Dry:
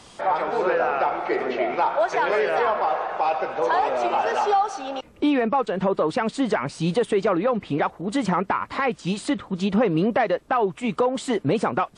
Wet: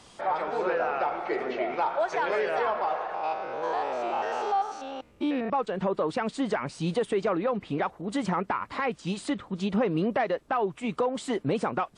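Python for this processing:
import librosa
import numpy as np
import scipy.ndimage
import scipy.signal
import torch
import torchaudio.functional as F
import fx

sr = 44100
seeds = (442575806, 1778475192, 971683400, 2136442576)

y = fx.spec_steps(x, sr, hold_ms=100, at=(3.14, 5.5))
y = y * librosa.db_to_amplitude(-5.5)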